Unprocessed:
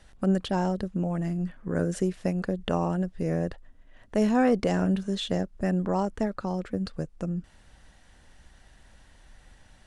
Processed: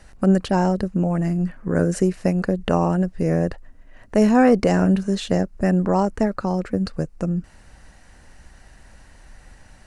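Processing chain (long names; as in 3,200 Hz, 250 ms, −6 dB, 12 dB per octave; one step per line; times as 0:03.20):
parametric band 3,400 Hz −10.5 dB 0.27 octaves
level +7.5 dB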